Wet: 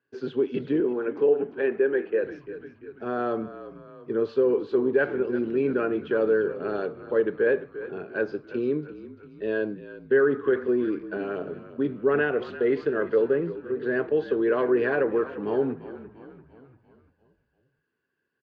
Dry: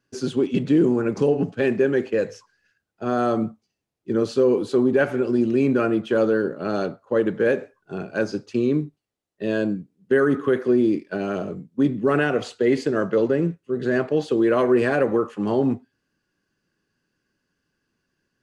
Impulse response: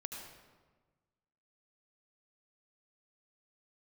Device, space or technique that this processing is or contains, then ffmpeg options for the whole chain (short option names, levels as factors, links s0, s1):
frequency-shifting delay pedal into a guitar cabinet: -filter_complex "[0:a]asplit=7[s0][s1][s2][s3][s4][s5][s6];[s1]adelay=344,afreqshift=-45,volume=0.2[s7];[s2]adelay=688,afreqshift=-90,volume=0.11[s8];[s3]adelay=1032,afreqshift=-135,volume=0.0603[s9];[s4]adelay=1376,afreqshift=-180,volume=0.0331[s10];[s5]adelay=1720,afreqshift=-225,volume=0.0182[s11];[s6]adelay=2064,afreqshift=-270,volume=0.01[s12];[s0][s7][s8][s9][s10][s11][s12]amix=inputs=7:normalize=0,highpass=94,equalizer=f=110:t=q:w=4:g=-3,equalizer=f=190:t=q:w=4:g=-6,equalizer=f=430:t=q:w=4:g=9,equalizer=f=960:t=q:w=4:g=3,equalizer=f=1600:t=q:w=4:g=7,lowpass=f=3800:w=0.5412,lowpass=f=3800:w=1.3066,asettb=1/sr,asplit=3[s13][s14][s15];[s13]atrim=end=0.804[s16];[s14]atrim=start=0.8:end=2.24,asetpts=PTS-STARTPTS,afade=t=in:d=0.004:c=qsin,afade=t=out:st=1.436:d=0.004:c=qsin,acrossover=split=230 3500:gain=0.158 1 0.2[s17][s18][s19];[s17][s18][s19]amix=inputs=3:normalize=0[s20];[s15]atrim=start=2.236[s21];[s16][s20]acrossfade=d=0.004:c1=hsin:c2=qsin[s22];[s22][s21]acrossfade=d=0.004:c1=qsin:c2=hsin,volume=0.398"